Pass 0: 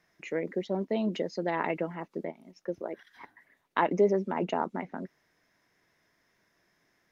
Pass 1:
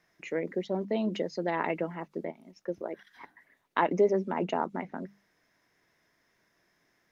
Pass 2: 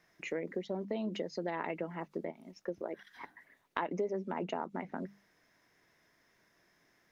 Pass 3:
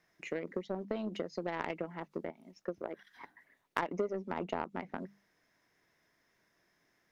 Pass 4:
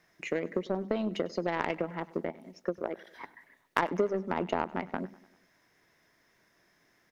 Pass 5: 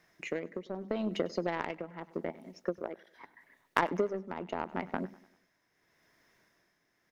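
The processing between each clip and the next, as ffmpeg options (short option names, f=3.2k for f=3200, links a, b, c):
-af "bandreject=f=50:t=h:w=6,bandreject=f=100:t=h:w=6,bandreject=f=150:t=h:w=6,bandreject=f=200:t=h:w=6"
-af "acompressor=threshold=-36dB:ratio=3,volume=1dB"
-af "aeval=exprs='0.141*(cos(1*acos(clip(val(0)/0.141,-1,1)))-cos(1*PI/2))+0.00112*(cos(5*acos(clip(val(0)/0.141,-1,1)))-cos(5*PI/2))+0.0112*(cos(7*acos(clip(val(0)/0.141,-1,1)))-cos(7*PI/2))':c=same,volume=2.5dB"
-af "aecho=1:1:99|198|297|396:0.0944|0.0529|0.0296|0.0166,volume=6dB"
-af "tremolo=f=0.8:d=0.62"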